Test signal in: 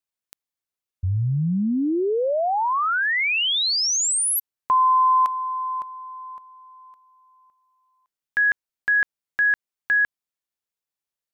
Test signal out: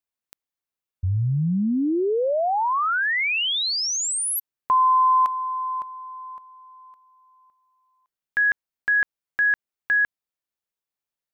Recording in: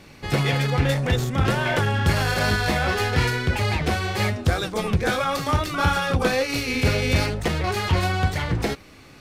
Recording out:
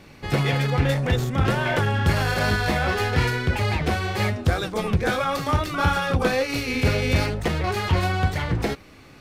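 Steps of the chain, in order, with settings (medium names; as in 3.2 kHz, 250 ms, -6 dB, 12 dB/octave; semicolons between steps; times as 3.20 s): peaking EQ 7.8 kHz -3.5 dB 2.4 oct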